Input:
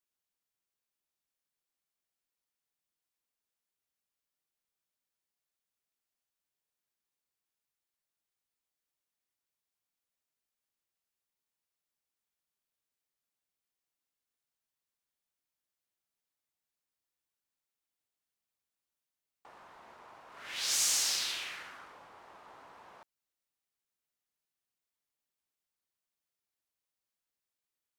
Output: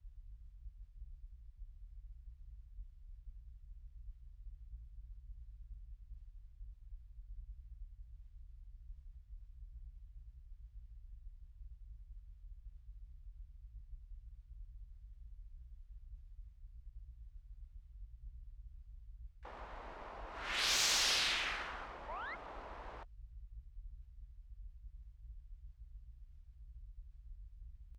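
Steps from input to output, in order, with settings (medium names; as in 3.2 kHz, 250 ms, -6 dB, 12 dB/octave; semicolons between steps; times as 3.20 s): band noise 32–62 Hz -58 dBFS; distance through air 130 m; in parallel at -7 dB: overload inside the chain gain 32.5 dB; on the sum: painted sound rise, 22.08–22.35 s, 850–2200 Hz -46 dBFS; reverse; upward compressor, threshold -51 dBFS; reverse; harmony voices -7 st -4 dB, -4 st -15 dB, +12 st -15 dB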